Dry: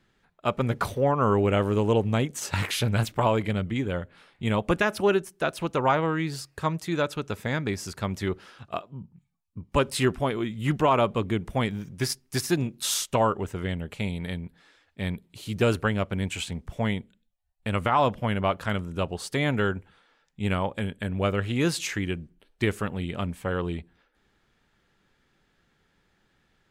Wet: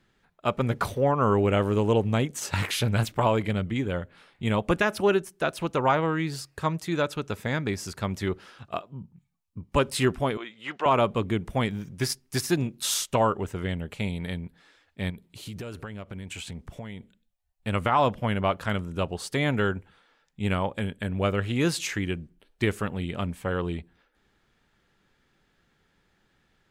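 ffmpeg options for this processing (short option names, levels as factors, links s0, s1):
-filter_complex "[0:a]asettb=1/sr,asplit=3[s0][s1][s2];[s0]atrim=end=10.374[s3];[s1]atrim=start=10.37:end=10.86,asetpts=PTS-STARTPTS,afade=t=in:d=0.004:c=qsin,afade=t=out:st=0.486:d=0.004:c=qsin,highpass=630,lowpass=4400[s4];[s2]atrim=start=10.856[s5];[s3][s4]acrossfade=d=0.004:c1=hsin:c2=qsin[s6];[s6][s5]acrossfade=d=0.004:c1=qsin:c2=hsin,asettb=1/sr,asplit=3[s7][s8][s9];[s7]atrim=end=15.104[s10];[s8]atrim=start=15.1:end=17.67,asetpts=PTS-STARTPTS,afade=t=in:d=0.004:c=qsin,afade=t=out:st=2.566:d=0.004:c=qsin,acompressor=threshold=0.0224:ratio=16:attack=3.2:release=140:knee=1:detection=peak[s11];[s9]atrim=start=17.666[s12];[s10][s11]acrossfade=d=0.004:c1=hsin:c2=qsin[s13];[s13][s12]acrossfade=d=0.004:c1=qsin:c2=hsin"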